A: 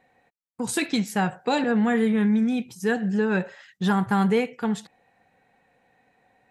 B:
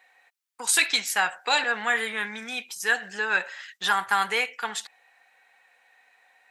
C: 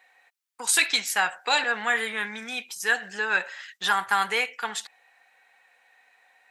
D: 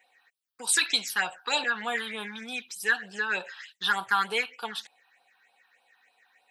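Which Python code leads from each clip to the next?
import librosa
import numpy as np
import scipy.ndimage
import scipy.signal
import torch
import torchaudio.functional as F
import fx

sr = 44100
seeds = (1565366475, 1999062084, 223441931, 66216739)

y1 = scipy.signal.sosfilt(scipy.signal.butter(2, 1300.0, 'highpass', fs=sr, output='sos'), x)
y1 = F.gain(torch.from_numpy(y1), 8.5).numpy()
y2 = y1
y3 = fx.phaser_stages(y2, sr, stages=6, low_hz=530.0, high_hz=2000.0, hz=3.3, feedback_pct=0)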